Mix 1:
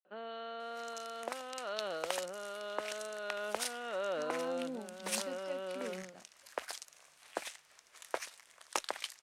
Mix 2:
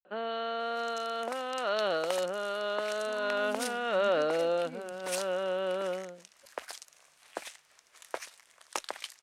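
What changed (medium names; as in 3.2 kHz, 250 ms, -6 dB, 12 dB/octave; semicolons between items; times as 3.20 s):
speech: entry -1.10 s; first sound +9.5 dB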